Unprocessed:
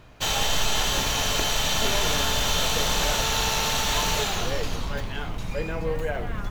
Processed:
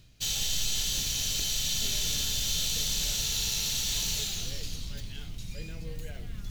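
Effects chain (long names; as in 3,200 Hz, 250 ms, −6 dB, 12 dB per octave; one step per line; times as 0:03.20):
drawn EQ curve 150 Hz 0 dB, 1,000 Hz −19 dB, 4,300 Hz +6 dB
reversed playback
upward compression, threshold −27 dBFS
reversed playback
level −7.5 dB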